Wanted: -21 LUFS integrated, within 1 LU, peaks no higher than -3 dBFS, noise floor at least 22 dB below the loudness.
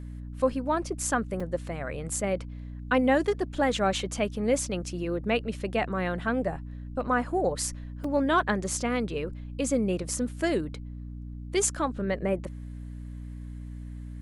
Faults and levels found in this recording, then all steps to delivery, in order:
dropouts 2; longest dropout 3.8 ms; hum 60 Hz; harmonics up to 300 Hz; hum level -36 dBFS; loudness -28.5 LUFS; peak -11.5 dBFS; loudness target -21.0 LUFS
-> interpolate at 1.4/8.04, 3.8 ms; de-hum 60 Hz, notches 5; gain +7.5 dB

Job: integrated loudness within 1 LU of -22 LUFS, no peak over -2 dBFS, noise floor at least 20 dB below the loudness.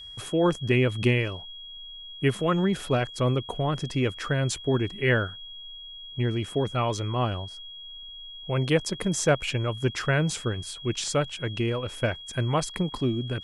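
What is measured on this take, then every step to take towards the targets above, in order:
steady tone 3300 Hz; tone level -40 dBFS; loudness -27.0 LUFS; peak -10.0 dBFS; loudness target -22.0 LUFS
-> notch 3300 Hz, Q 30; gain +5 dB

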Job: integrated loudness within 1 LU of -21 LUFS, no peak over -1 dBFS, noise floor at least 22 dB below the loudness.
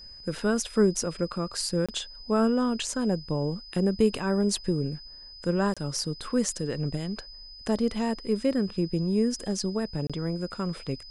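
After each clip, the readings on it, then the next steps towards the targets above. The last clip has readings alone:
dropouts 3; longest dropout 26 ms; steady tone 5000 Hz; tone level -44 dBFS; loudness -28.0 LUFS; peak -10.5 dBFS; loudness target -21.0 LUFS
-> interpolate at 1.86/5.74/10.07, 26 ms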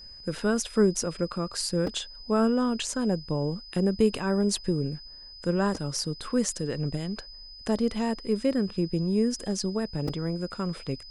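dropouts 0; steady tone 5000 Hz; tone level -44 dBFS
-> notch 5000 Hz, Q 30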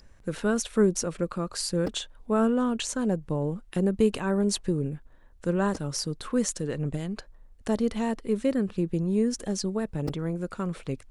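steady tone none; loudness -28.0 LUFS; peak -10.5 dBFS; loudness target -21.0 LUFS
-> gain +7 dB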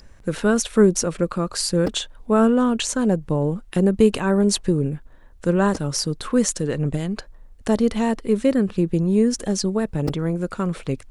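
loudness -21.0 LUFS; peak -3.5 dBFS; noise floor -46 dBFS

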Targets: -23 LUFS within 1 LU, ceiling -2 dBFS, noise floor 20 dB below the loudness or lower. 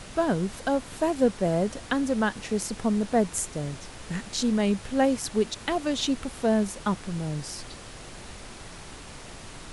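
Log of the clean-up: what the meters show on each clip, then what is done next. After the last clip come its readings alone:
noise floor -43 dBFS; noise floor target -47 dBFS; loudness -27.0 LUFS; peak -10.5 dBFS; loudness target -23.0 LUFS
-> noise print and reduce 6 dB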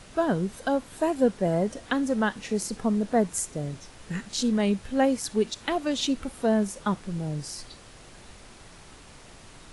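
noise floor -49 dBFS; loudness -27.5 LUFS; peak -10.5 dBFS; loudness target -23.0 LUFS
-> gain +4.5 dB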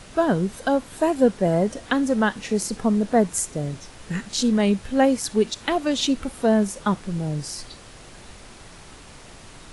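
loudness -23.0 LUFS; peak -6.0 dBFS; noise floor -45 dBFS

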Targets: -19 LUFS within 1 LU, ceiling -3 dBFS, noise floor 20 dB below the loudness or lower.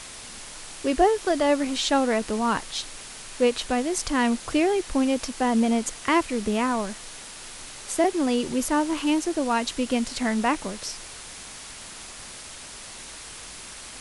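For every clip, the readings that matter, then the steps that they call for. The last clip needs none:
noise floor -41 dBFS; noise floor target -45 dBFS; loudness -24.5 LUFS; peak -9.0 dBFS; loudness target -19.0 LUFS
-> denoiser 6 dB, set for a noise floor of -41 dBFS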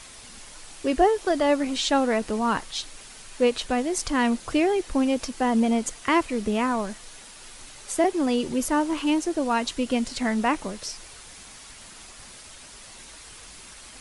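noise floor -45 dBFS; loudness -24.5 LUFS; peak -9.0 dBFS; loudness target -19.0 LUFS
-> gain +5.5 dB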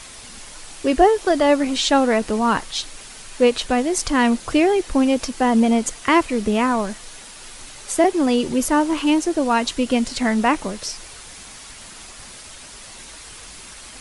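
loudness -19.0 LUFS; peak -3.5 dBFS; noise floor -40 dBFS

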